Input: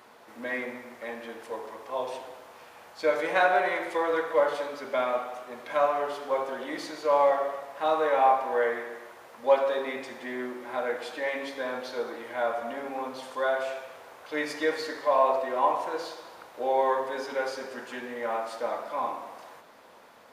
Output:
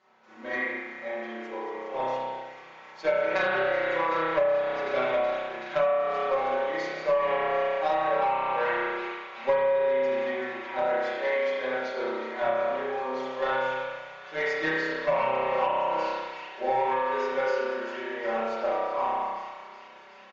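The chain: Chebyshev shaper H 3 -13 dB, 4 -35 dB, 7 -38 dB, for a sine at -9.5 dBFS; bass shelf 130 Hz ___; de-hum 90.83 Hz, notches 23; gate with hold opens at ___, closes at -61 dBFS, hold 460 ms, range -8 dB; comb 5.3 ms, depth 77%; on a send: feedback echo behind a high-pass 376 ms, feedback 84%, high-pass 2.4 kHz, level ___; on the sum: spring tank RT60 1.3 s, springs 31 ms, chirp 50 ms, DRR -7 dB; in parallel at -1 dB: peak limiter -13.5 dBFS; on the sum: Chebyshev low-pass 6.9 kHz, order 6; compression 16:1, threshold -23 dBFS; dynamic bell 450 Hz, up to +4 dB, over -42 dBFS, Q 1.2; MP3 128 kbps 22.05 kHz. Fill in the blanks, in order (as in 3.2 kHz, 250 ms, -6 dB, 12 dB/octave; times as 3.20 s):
-3.5 dB, -56 dBFS, -13.5 dB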